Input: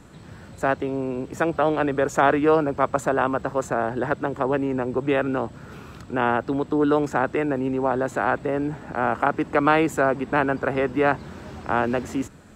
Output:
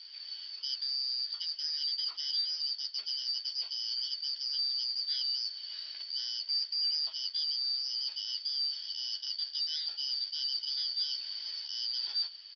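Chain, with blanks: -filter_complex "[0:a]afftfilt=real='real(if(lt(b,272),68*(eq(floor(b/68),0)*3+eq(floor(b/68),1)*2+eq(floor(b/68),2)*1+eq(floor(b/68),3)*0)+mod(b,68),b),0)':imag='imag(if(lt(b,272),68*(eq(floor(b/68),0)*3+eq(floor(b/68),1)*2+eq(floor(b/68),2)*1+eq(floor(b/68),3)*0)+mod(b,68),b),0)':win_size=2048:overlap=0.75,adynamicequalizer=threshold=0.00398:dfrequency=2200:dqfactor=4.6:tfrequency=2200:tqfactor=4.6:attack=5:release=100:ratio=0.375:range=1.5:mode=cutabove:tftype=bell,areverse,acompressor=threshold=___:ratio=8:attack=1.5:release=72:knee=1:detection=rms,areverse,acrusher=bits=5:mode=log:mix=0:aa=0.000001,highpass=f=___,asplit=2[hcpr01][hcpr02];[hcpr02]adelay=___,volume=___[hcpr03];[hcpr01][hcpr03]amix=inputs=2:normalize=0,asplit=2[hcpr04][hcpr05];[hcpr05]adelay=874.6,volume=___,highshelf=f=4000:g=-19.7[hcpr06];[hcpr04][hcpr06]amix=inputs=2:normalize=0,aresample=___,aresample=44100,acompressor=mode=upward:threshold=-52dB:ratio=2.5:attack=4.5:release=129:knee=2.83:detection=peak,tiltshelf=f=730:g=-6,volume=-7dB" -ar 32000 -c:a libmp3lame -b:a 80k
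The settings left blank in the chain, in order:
-28dB, 230, 12, -5.5dB, -17dB, 11025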